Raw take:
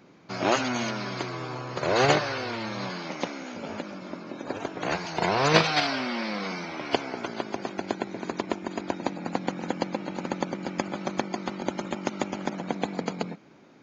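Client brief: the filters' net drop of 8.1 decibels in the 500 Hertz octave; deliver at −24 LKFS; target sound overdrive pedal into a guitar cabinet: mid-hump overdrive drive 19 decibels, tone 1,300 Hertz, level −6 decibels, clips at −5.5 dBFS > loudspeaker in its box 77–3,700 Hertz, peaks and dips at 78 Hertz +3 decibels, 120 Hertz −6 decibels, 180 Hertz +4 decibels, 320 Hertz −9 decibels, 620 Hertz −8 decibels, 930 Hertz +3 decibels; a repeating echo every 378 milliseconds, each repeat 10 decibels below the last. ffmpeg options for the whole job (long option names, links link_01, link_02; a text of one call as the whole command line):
ffmpeg -i in.wav -filter_complex "[0:a]equalizer=frequency=500:width_type=o:gain=-5,aecho=1:1:378|756|1134|1512:0.316|0.101|0.0324|0.0104,asplit=2[link_01][link_02];[link_02]highpass=frequency=720:poles=1,volume=19dB,asoftclip=type=tanh:threshold=-5.5dB[link_03];[link_01][link_03]amix=inputs=2:normalize=0,lowpass=frequency=1300:poles=1,volume=-6dB,highpass=77,equalizer=frequency=78:width_type=q:width=4:gain=3,equalizer=frequency=120:width_type=q:width=4:gain=-6,equalizer=frequency=180:width_type=q:width=4:gain=4,equalizer=frequency=320:width_type=q:width=4:gain=-9,equalizer=frequency=620:width_type=q:width=4:gain=-8,equalizer=frequency=930:width_type=q:width=4:gain=3,lowpass=frequency=3700:width=0.5412,lowpass=frequency=3700:width=1.3066,volume=1.5dB" out.wav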